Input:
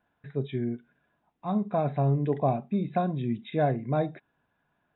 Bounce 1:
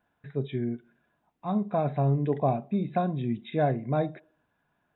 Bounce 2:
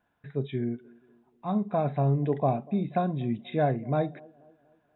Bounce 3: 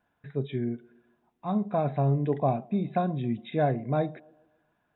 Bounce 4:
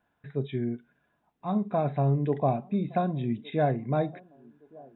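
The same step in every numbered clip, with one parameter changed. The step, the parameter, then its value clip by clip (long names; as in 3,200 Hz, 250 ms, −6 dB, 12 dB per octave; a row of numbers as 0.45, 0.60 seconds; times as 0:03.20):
delay with a band-pass on its return, delay time: 69, 241, 137, 1,166 milliseconds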